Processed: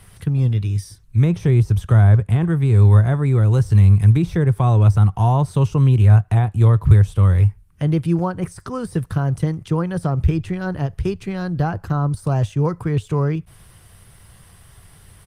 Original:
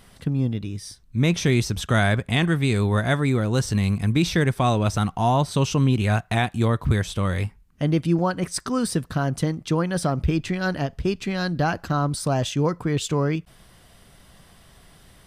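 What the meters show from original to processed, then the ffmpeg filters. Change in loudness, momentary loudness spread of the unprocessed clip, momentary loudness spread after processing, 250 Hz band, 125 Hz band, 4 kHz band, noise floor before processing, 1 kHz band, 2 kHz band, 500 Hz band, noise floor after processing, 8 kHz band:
+5.5 dB, 6 LU, 11 LU, +1.0 dB, +9.0 dB, below −10 dB, −53 dBFS, −1.0 dB, −6.5 dB, 0.0 dB, −49 dBFS, can't be measured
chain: -filter_complex "[0:a]deesser=0.7,equalizer=frequency=100:width_type=o:width=0.67:gain=9,equalizer=frequency=250:width_type=o:width=0.67:gain=-10,equalizer=frequency=630:width_type=o:width=0.67:gain=-6,equalizer=frequency=4000:width_type=o:width=0.67:gain=-3,equalizer=frequency=10000:width_type=o:width=0.67:gain=4,acrossover=split=180|1100[link_01][link_02][link_03];[link_03]acompressor=threshold=-42dB:ratio=16[link_04];[link_01][link_02][link_04]amix=inputs=3:normalize=0,aresample=32000,aresample=44100,volume=4.5dB" -ar 48000 -c:a libopus -b:a 32k

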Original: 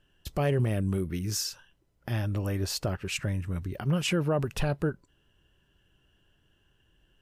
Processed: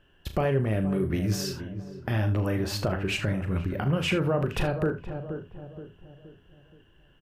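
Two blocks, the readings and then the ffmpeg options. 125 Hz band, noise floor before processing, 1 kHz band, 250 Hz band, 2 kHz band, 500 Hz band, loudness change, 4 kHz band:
+2.0 dB, −70 dBFS, +4.0 dB, +3.5 dB, +4.0 dB, +3.5 dB, +2.0 dB, +0.5 dB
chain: -filter_complex "[0:a]highshelf=frequency=11000:gain=8.5,alimiter=limit=-20dB:level=0:latency=1,bass=frequency=250:gain=-3,treble=frequency=4000:gain=-15,asplit=2[link_01][link_02];[link_02]adelay=473,lowpass=frequency=950:poles=1,volume=-11.5dB,asplit=2[link_03][link_04];[link_04]adelay=473,lowpass=frequency=950:poles=1,volume=0.46,asplit=2[link_05][link_06];[link_06]adelay=473,lowpass=frequency=950:poles=1,volume=0.46,asplit=2[link_07][link_08];[link_08]adelay=473,lowpass=frequency=950:poles=1,volume=0.46,asplit=2[link_09][link_10];[link_10]adelay=473,lowpass=frequency=950:poles=1,volume=0.46[link_11];[link_03][link_05][link_07][link_09][link_11]amix=inputs=5:normalize=0[link_12];[link_01][link_12]amix=inputs=2:normalize=0,acompressor=threshold=-29dB:ratio=6,asplit=2[link_13][link_14];[link_14]aecho=0:1:37|66|78:0.355|0.15|0.168[link_15];[link_13][link_15]amix=inputs=2:normalize=0,volume=7.5dB"

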